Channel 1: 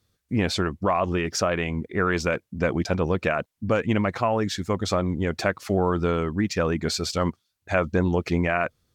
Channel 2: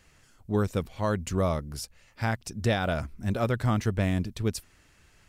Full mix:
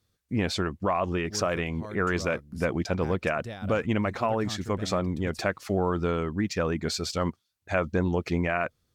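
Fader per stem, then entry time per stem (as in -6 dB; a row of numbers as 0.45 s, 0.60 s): -3.5 dB, -13.5 dB; 0.00 s, 0.80 s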